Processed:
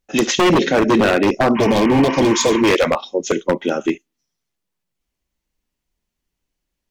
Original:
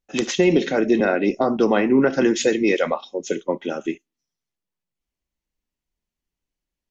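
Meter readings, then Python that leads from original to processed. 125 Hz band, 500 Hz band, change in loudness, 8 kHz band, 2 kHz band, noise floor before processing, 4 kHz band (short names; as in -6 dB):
+7.5 dB, +3.5 dB, +4.0 dB, n/a, +4.5 dB, under -85 dBFS, +8.5 dB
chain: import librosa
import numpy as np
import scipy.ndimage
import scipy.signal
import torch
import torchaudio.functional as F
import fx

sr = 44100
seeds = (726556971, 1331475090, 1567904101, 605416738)

y = 10.0 ** (-14.5 / 20.0) * (np.abs((x / 10.0 ** (-14.5 / 20.0) + 3.0) % 4.0 - 2.0) - 1.0)
y = fx.spec_repair(y, sr, seeds[0], start_s=1.59, length_s=0.99, low_hz=890.0, high_hz=3100.0, source='after')
y = y * librosa.db_to_amplitude(7.0)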